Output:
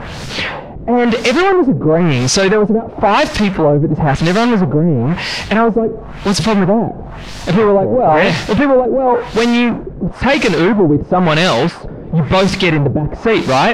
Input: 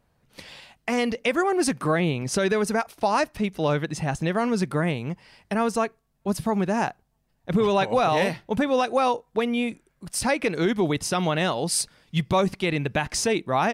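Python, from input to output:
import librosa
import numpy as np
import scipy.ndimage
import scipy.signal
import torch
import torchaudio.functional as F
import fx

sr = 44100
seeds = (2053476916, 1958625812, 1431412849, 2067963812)

y = fx.power_curve(x, sr, exponent=0.35)
y = fx.quant_dither(y, sr, seeds[0], bits=6, dither='triangular')
y = fx.filter_lfo_lowpass(y, sr, shape='sine', hz=0.98, low_hz=380.0, high_hz=5500.0, q=1.4)
y = F.gain(torch.from_numpy(y), 5.5).numpy()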